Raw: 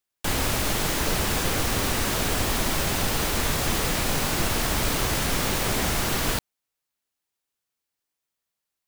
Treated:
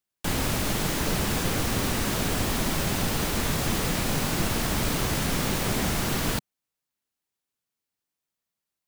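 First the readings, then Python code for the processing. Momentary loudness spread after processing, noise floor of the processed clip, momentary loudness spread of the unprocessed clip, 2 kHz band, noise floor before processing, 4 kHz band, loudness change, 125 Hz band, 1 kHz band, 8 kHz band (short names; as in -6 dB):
1 LU, under -85 dBFS, 0 LU, -3.0 dB, -85 dBFS, -3.0 dB, -2.0 dB, +0.5 dB, -2.5 dB, -3.0 dB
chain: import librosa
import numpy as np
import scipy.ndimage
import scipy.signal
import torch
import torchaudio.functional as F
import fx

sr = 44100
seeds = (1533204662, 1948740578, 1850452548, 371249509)

y = fx.peak_eq(x, sr, hz=180.0, db=6.0, octaves=1.6)
y = y * 10.0 ** (-3.0 / 20.0)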